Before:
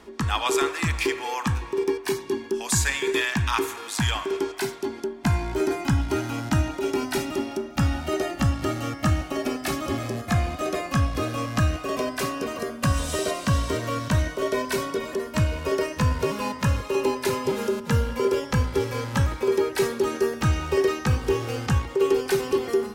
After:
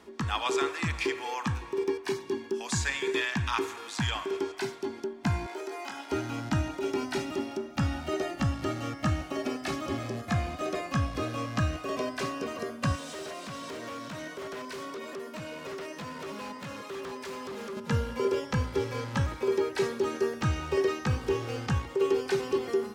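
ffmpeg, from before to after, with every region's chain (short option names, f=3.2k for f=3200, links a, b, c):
-filter_complex "[0:a]asettb=1/sr,asplit=3[a][b][c];[a]atrim=end=5.464[d];[b]atrim=start=5.46:end=6.12,asetpts=PTS-STARTPTS,afade=t=in:d=0.004:c=qsin,afade=t=out:st=0.656:d=0.004:c=qsin,highpass=f=370:w=0.5412,highpass=f=370:w=1.3066,acompressor=threshold=-29dB:ratio=4:attack=3.2:release=140:knee=1:detection=peak,asplit=2[e][f];[f]adelay=24,volume=-5dB[g];[e][g]amix=inputs=2:normalize=0,atrim=end_sample=29106[h];[c]atrim=start=6.116[i];[d][h]acrossfade=d=0.004:c1=hsin:c2=qsin[j];[j][i]acrossfade=d=0.004:c1=qsin:c2=hsin,asettb=1/sr,asplit=3[k][l][m];[k]atrim=end=12.954[n];[l]atrim=start=12.95:end=17.77,asetpts=PTS-STARTPTS,afade=t=in:d=0.004:c=qsin,afade=t=out:st=4.816:d=0.004:c=qsin,highpass=f=170:w=0.5412,highpass=f=170:w=1.3066,acompressor=threshold=-31dB:ratio=2:attack=3.2:release=140:knee=1:detection=peak,aeval=exprs='0.0398*(abs(mod(val(0)/0.0398+3,4)-2)-1)':c=same[o];[m]atrim=start=17.766[p];[n][o]acrossfade=d=0.004:c1=hsin:c2=qsin[q];[q][p]acrossfade=d=0.004:c1=qsin:c2=hsin,acrossover=split=7400[r][s];[s]acompressor=threshold=-53dB:ratio=4:attack=1:release=60[t];[r][t]amix=inputs=2:normalize=0,highpass=72,volume=-5dB"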